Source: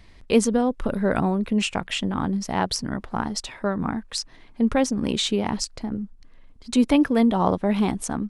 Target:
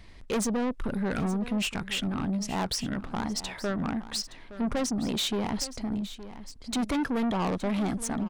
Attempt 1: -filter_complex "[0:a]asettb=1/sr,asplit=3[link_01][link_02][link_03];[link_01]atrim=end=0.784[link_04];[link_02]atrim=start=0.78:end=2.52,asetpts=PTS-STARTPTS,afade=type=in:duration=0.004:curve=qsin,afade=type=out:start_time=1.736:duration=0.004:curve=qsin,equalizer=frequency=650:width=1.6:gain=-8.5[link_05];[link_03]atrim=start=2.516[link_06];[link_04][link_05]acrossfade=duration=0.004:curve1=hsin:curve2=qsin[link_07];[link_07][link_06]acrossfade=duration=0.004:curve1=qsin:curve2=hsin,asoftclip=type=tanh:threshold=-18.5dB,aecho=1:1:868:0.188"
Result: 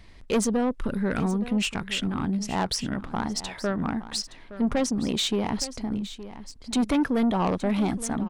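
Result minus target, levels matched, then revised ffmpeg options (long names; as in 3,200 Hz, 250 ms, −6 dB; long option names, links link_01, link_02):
soft clipping: distortion −5 dB
-filter_complex "[0:a]asettb=1/sr,asplit=3[link_01][link_02][link_03];[link_01]atrim=end=0.784[link_04];[link_02]atrim=start=0.78:end=2.52,asetpts=PTS-STARTPTS,afade=type=in:duration=0.004:curve=qsin,afade=type=out:start_time=1.736:duration=0.004:curve=qsin,equalizer=frequency=650:width=1.6:gain=-8.5[link_05];[link_03]atrim=start=2.516[link_06];[link_04][link_05]acrossfade=duration=0.004:curve1=hsin:curve2=qsin[link_07];[link_07][link_06]acrossfade=duration=0.004:curve1=qsin:curve2=hsin,asoftclip=type=tanh:threshold=-25dB,aecho=1:1:868:0.188"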